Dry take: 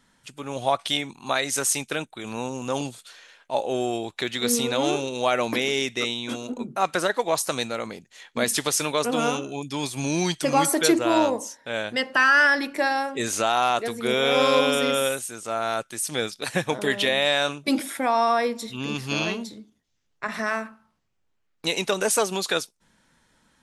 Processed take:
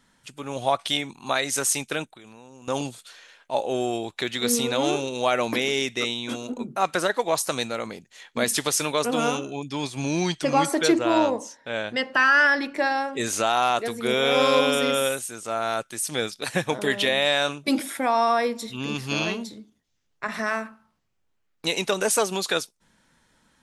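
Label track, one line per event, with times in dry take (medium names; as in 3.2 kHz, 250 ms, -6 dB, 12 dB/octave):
2.090000	2.680000	compression 4:1, threshold -45 dBFS
9.500000	13.130000	distance through air 57 m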